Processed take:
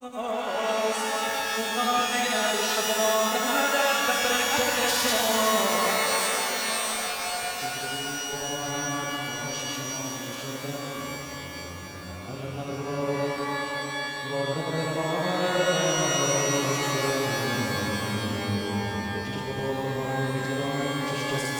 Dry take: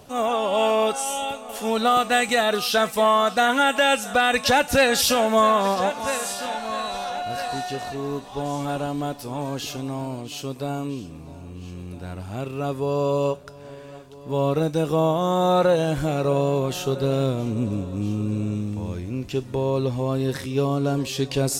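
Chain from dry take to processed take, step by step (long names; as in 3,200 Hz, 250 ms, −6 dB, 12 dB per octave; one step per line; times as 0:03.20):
granular cloud, pitch spread up and down by 0 semitones
reverb with rising layers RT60 3.9 s, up +12 semitones, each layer −2 dB, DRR 0 dB
level −7.5 dB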